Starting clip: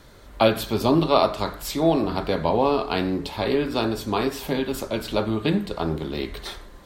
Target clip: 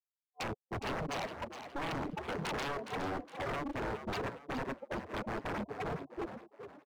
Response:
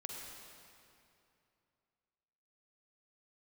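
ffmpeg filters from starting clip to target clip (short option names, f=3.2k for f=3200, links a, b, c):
-filter_complex "[0:a]bandreject=f=60:t=h:w=6,bandreject=f=120:t=h:w=6,bandreject=f=180:t=h:w=6,bandreject=f=240:t=h:w=6,afftfilt=real='re*gte(hypot(re,im),0.316)':imag='im*gte(hypot(re,im),0.316)':win_size=1024:overlap=0.75,equalizer=f=6k:t=o:w=2.8:g=-12,dynaudnorm=f=340:g=9:m=6dB,superequalizer=8b=0.562:9b=2.24:10b=0.447:13b=0.562,acrossover=split=150[a][b];[b]acompressor=threshold=-28dB:ratio=3[c];[a][c]amix=inputs=2:normalize=0,tremolo=f=290:d=0.667,aeval=exprs='0.0224*(abs(mod(val(0)/0.0224+3,4)-2)-1)':c=same,asplit=2[d][e];[e]asplit=4[f][g][h][i];[f]adelay=414,afreqshift=68,volume=-9.5dB[j];[g]adelay=828,afreqshift=136,volume=-18.4dB[k];[h]adelay=1242,afreqshift=204,volume=-27.2dB[l];[i]adelay=1656,afreqshift=272,volume=-36.1dB[m];[j][k][l][m]amix=inputs=4:normalize=0[n];[d][n]amix=inputs=2:normalize=0,volume=1dB"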